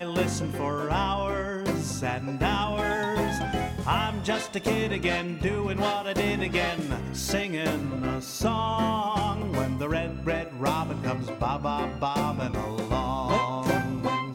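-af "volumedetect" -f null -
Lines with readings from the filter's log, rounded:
mean_volume: -27.7 dB
max_volume: -10.9 dB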